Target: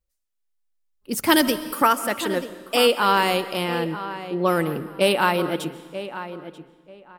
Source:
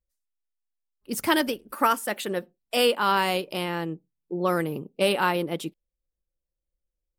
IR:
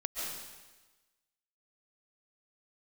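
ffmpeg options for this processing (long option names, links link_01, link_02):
-filter_complex "[0:a]asettb=1/sr,asplit=3[link_01][link_02][link_03];[link_01]atrim=end=1.294[link_04];[link_02]atrim=start=1.29:end=1.82,asetpts=PTS-STARTPTS,afade=type=in:duration=0.004:curve=qsin,afade=type=out:start_time=0.526:duration=0.004:curve=qsin,bass=frequency=250:gain=8,treble=frequency=4000:gain=7[link_05];[link_03]atrim=start=1.816[link_06];[link_04][link_05]acrossfade=duration=0.004:curve1=hsin:curve2=qsin[link_07];[link_07][link_06]acrossfade=duration=0.004:curve1=qsin:curve2=hsin,asplit=2[link_08][link_09];[link_09]adelay=937,lowpass=frequency=2300:poles=1,volume=-12dB,asplit=2[link_10][link_11];[link_11]adelay=937,lowpass=frequency=2300:poles=1,volume=0.21,asplit=2[link_12][link_13];[link_13]adelay=937,lowpass=frequency=2300:poles=1,volume=0.21[link_14];[link_08][link_10][link_12][link_14]amix=inputs=4:normalize=0,asplit=2[link_15][link_16];[1:a]atrim=start_sample=2205[link_17];[link_16][link_17]afir=irnorm=-1:irlink=0,volume=-15dB[link_18];[link_15][link_18]amix=inputs=2:normalize=0,volume=2.5dB"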